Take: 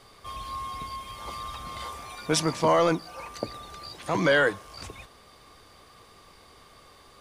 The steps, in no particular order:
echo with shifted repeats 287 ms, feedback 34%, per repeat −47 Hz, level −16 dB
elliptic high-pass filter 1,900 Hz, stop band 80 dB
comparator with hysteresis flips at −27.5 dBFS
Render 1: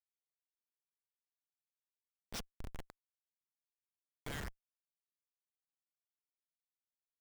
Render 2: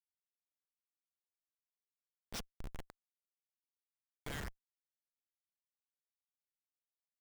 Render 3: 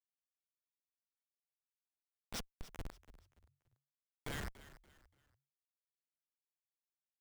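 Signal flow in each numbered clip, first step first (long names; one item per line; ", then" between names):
echo with shifted repeats, then elliptic high-pass filter, then comparator with hysteresis
elliptic high-pass filter, then echo with shifted repeats, then comparator with hysteresis
elliptic high-pass filter, then comparator with hysteresis, then echo with shifted repeats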